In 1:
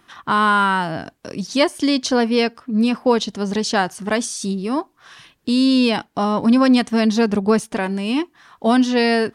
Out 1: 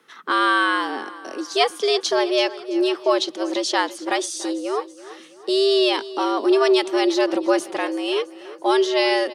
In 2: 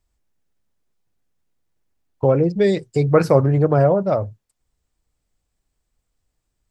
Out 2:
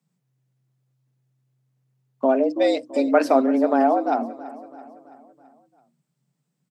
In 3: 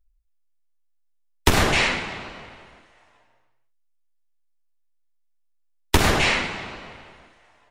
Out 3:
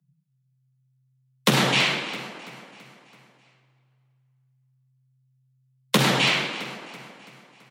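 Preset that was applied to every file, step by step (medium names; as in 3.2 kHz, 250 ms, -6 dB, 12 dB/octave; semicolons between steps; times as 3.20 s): feedback delay 332 ms, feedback 53%, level -16.5 dB; frequency shift +130 Hz; dynamic bell 3.5 kHz, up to +6 dB, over -39 dBFS, Q 1.9; trim -3 dB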